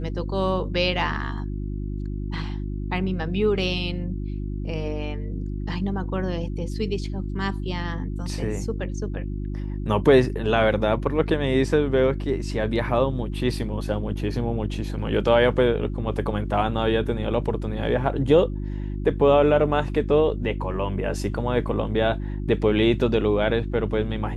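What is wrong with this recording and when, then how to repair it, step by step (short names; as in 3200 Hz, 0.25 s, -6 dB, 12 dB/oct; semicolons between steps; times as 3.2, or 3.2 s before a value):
hum 50 Hz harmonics 7 -29 dBFS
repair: de-hum 50 Hz, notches 7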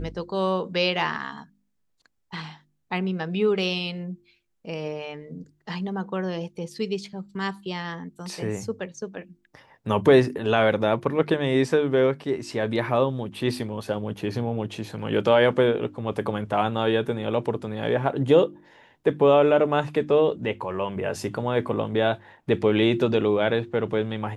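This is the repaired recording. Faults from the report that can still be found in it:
none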